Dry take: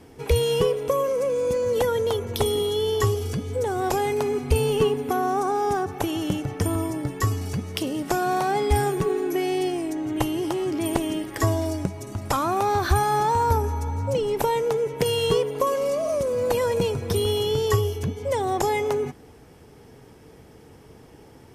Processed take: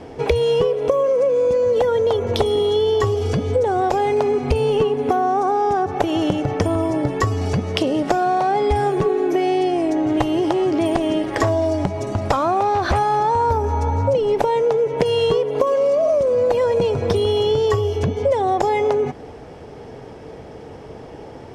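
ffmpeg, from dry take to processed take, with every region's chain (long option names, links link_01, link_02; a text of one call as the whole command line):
ffmpeg -i in.wav -filter_complex "[0:a]asettb=1/sr,asplit=3[link_01][link_02][link_03];[link_01]atrim=end=10.094[link_04];[link_02]atrim=start=10.09:end=13.17,asetpts=PTS-STARTPTS,afade=type=in:duration=0.004:curve=qsin,afade=type=out:start_time=3.076:duration=0.004:curve=qsin,aeval=exprs='0.188*(abs(mod(val(0)/0.188+3,4)-2)-1)':channel_layout=same,acrusher=bits=7:mode=log:mix=0:aa=0.000001[link_05];[link_03]atrim=start=13.166[link_06];[link_04][link_05]acrossfade=duration=0.004:curve1=hsin:curve2=qsin[link_07];[link_07][link_06]acrossfade=duration=0.004:curve1=qsin:curve2=hsin,lowpass=5300,equalizer=frequency=620:width_type=o:width=1.1:gain=8.5,acompressor=threshold=-24dB:ratio=6,volume=8.5dB" out.wav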